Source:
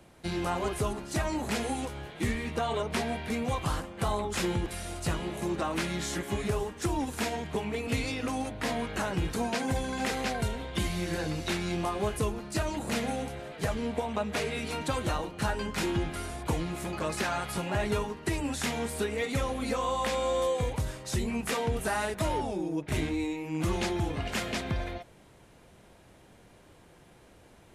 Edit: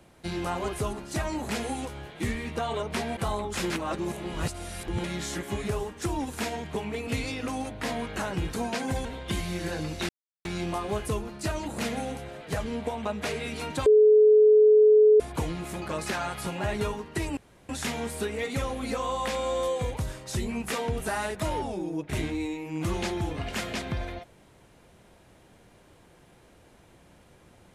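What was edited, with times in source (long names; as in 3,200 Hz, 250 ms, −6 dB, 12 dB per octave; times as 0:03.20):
0:03.17–0:03.97: remove
0:04.50–0:05.84: reverse
0:09.85–0:10.52: remove
0:11.56: splice in silence 0.36 s
0:14.97–0:16.31: beep over 427 Hz −13.5 dBFS
0:18.48: splice in room tone 0.32 s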